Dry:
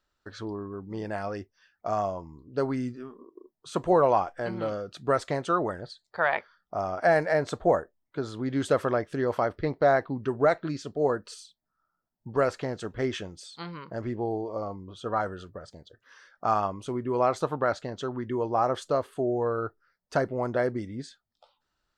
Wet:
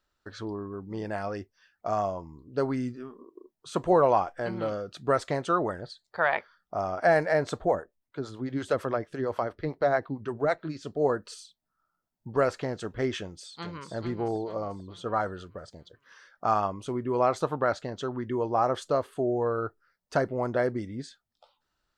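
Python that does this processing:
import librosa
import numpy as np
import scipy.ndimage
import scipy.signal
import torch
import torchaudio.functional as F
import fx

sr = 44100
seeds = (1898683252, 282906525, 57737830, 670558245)

y = fx.harmonic_tremolo(x, sr, hz=8.9, depth_pct=70, crossover_hz=430.0, at=(7.65, 10.83))
y = fx.echo_throw(y, sr, start_s=13.18, length_s=0.74, ms=440, feedback_pct=45, wet_db=-7.0)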